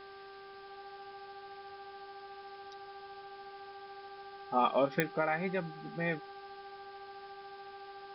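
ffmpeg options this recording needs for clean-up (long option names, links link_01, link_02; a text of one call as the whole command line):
ffmpeg -i in.wav -af "adeclick=threshold=4,bandreject=frequency=393.1:width_type=h:width=4,bandreject=frequency=786.2:width_type=h:width=4,bandreject=frequency=1179.3:width_type=h:width=4,bandreject=frequency=1572.4:width_type=h:width=4,bandreject=frequency=800:width=30,afwtdn=0.002" out.wav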